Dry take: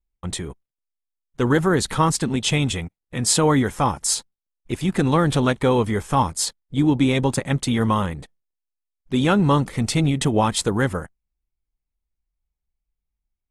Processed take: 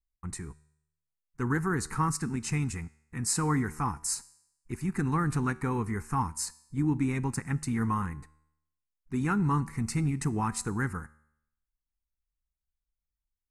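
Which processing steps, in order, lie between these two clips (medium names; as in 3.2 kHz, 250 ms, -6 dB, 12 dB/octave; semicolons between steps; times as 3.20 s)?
static phaser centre 1.4 kHz, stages 4; feedback comb 76 Hz, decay 0.75 s, harmonics all, mix 40%; trim -3.5 dB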